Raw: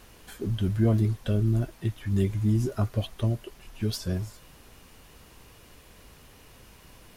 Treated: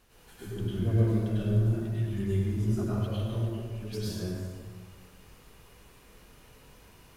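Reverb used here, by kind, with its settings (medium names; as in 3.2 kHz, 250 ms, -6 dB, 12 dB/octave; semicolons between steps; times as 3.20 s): plate-style reverb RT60 1.7 s, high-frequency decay 0.6×, pre-delay 85 ms, DRR -9.5 dB; trim -12.5 dB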